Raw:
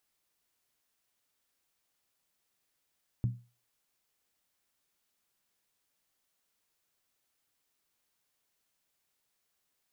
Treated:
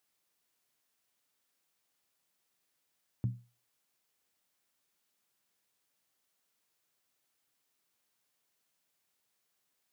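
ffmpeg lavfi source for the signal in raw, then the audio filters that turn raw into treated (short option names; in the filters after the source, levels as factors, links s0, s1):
-f lavfi -i "aevalsrc='0.0708*pow(10,-3*t/0.33)*sin(2*PI*120*t)+0.0224*pow(10,-3*t/0.261)*sin(2*PI*191.3*t)+0.00708*pow(10,-3*t/0.226)*sin(2*PI*256.3*t)+0.00224*pow(10,-3*t/0.218)*sin(2*PI*275.5*t)+0.000708*pow(10,-3*t/0.203)*sin(2*PI*318.4*t)':d=0.63:s=44100"
-af "highpass=94"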